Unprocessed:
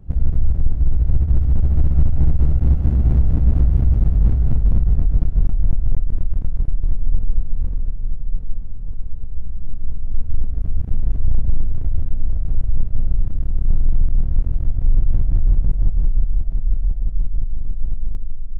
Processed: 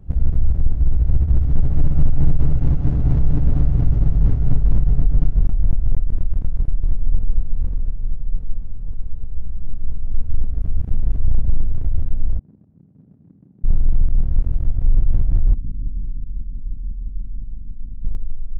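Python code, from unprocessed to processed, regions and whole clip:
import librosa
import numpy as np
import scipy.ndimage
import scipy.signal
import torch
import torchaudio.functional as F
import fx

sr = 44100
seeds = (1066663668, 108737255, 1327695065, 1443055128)

y = fx.chain(x, sr, fx.comb(ms=7.0, depth=0.48),
    fx.resample_bad(factor=3, down='none', up='filtered'), at=(1.47, 5.34))
y = fx.chain(y, sr, fx.envelope_sharpen(power=1.5),
    fx.highpass(hz=200.0, slope=24),
    fx.running_max(window=9), at=(12.39, 13.64))
y = fx.chain(y, sr, fx.ladder_lowpass(hz=300.0, resonance_pct=50),
    fx.echo_feedback(ms=99, feedback_pct=58, wet_db=-9.0), at=(15.54, 18.05))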